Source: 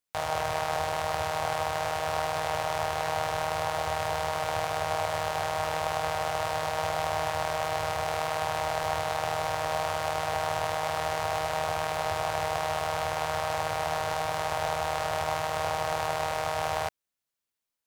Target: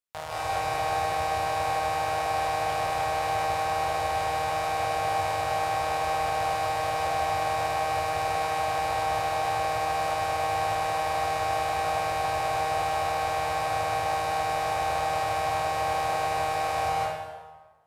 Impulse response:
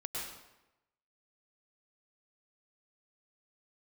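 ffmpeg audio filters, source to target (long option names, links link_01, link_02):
-filter_complex "[0:a]bandreject=frequency=6100:width=30[link_01];[1:a]atrim=start_sample=2205,asetrate=29106,aresample=44100[link_02];[link_01][link_02]afir=irnorm=-1:irlink=0,volume=-3.5dB"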